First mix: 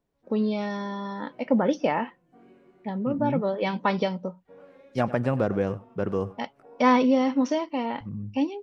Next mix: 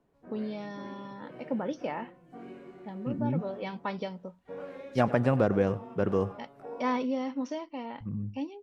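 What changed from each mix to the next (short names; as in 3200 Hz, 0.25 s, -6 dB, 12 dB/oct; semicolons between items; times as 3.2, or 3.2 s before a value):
first voice -10.0 dB; background +9.0 dB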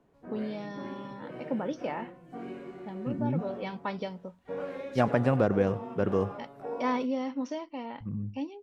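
background +5.0 dB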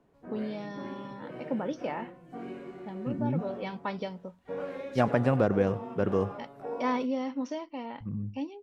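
none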